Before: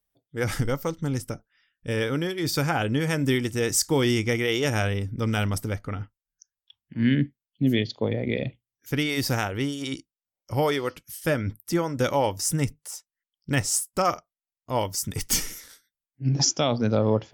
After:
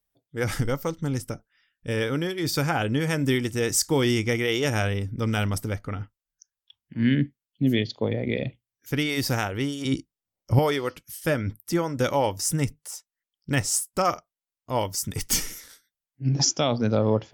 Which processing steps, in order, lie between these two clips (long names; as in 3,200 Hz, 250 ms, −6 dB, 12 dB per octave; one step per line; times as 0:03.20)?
0:09.85–0:10.59: low-shelf EQ 420 Hz +11 dB